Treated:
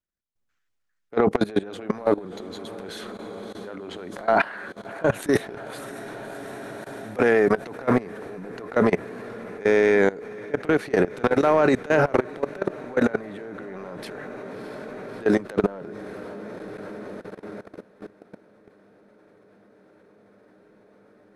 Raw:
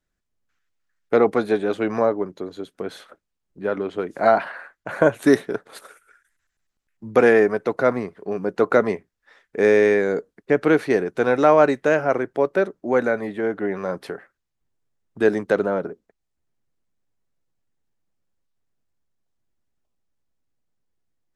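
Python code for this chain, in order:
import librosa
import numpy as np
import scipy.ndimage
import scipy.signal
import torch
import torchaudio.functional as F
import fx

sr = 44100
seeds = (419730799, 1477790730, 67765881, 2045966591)

y = fx.transient(x, sr, attack_db=-10, sustain_db=11)
y = fx.echo_diffused(y, sr, ms=646, feedback_pct=79, wet_db=-15.0)
y = fx.level_steps(y, sr, step_db=19)
y = y * librosa.db_to_amplitude(1.5)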